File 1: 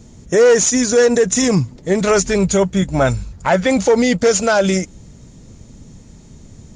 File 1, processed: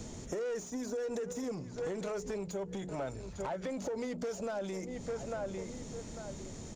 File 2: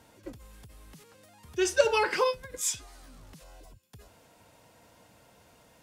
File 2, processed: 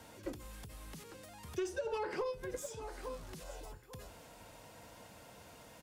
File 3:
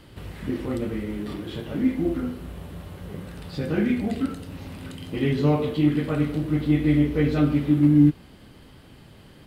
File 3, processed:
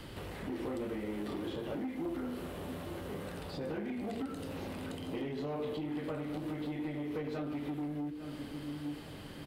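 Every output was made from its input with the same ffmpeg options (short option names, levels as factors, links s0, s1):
-filter_complex "[0:a]bandreject=f=60:t=h:w=6,bandreject=f=120:t=h:w=6,bandreject=f=180:t=h:w=6,bandreject=f=240:t=h:w=6,bandreject=f=300:t=h:w=6,bandreject=f=360:t=h:w=6,bandreject=f=420:t=h:w=6,asplit=2[s0][s1];[s1]adelay=848,lowpass=f=1400:p=1,volume=0.1,asplit=2[s2][s3];[s3]adelay=848,lowpass=f=1400:p=1,volume=0.25[s4];[s0][s2][s4]amix=inputs=3:normalize=0,alimiter=limit=0.282:level=0:latency=1:release=118,acompressor=threshold=0.0316:ratio=8,asoftclip=type=tanh:threshold=0.0335,acrossover=split=290|970[s5][s6][s7];[s5]acompressor=threshold=0.00282:ratio=4[s8];[s6]acompressor=threshold=0.0112:ratio=4[s9];[s7]acompressor=threshold=0.002:ratio=4[s10];[s8][s9][s10]amix=inputs=3:normalize=0,volume=1.5"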